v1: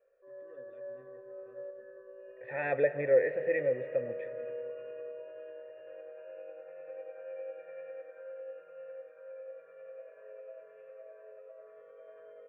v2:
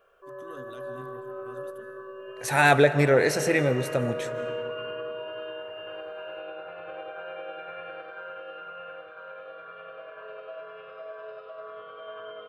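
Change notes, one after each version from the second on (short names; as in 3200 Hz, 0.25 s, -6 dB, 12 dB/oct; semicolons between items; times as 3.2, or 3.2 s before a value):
master: remove vocal tract filter e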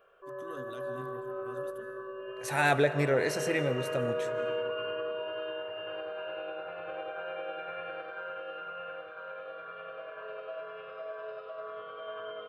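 second voice -7.0 dB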